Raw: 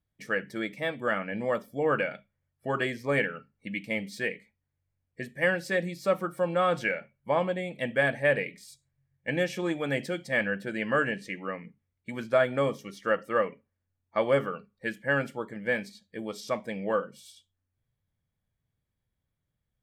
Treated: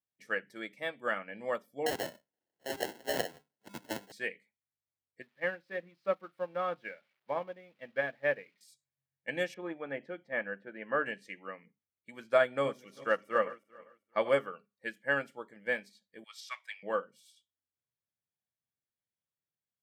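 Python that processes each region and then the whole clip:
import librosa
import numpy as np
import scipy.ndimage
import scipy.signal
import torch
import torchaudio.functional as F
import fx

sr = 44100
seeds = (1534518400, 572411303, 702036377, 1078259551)

y = fx.chain(x, sr, fx.bass_treble(bass_db=-13, treble_db=12),
    fx.sample_hold(seeds[0], rate_hz=1200.0, jitter_pct=0),
    fx.band_squash(depth_pct=40), at=(1.86, 4.12))
y = fx.chain(y, sr, fx.crossing_spikes(level_db=-28.0),
    fx.air_absorb(metres=360.0),
    fx.upward_expand(threshold_db=-48.0, expansion=1.5), at=(5.22, 8.61))
y = fx.chain(y, sr, fx.lowpass(hz=1700.0, slope=12),
    fx.peak_eq(hz=66.0, db=-7.5, octaves=1.6), at=(9.54, 11.06))
y = fx.chain(y, sr, fx.reverse_delay_fb(ms=198, feedback_pct=47, wet_db=-11.5),
    fx.low_shelf(hz=150.0, db=4.5), at=(12.45, 14.29))
y = fx.chain(y, sr, fx.highpass(hz=1200.0, slope=24),
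    fx.peak_eq(hz=2900.0, db=7.0, octaves=2.1), at=(16.24, 16.83))
y = scipy.signal.sosfilt(scipy.signal.bessel(2, 190.0, 'highpass', norm='mag', fs=sr, output='sos'), y)
y = fx.low_shelf(y, sr, hz=360.0, db=-5.5)
y = fx.upward_expand(y, sr, threshold_db=-42.0, expansion=1.5)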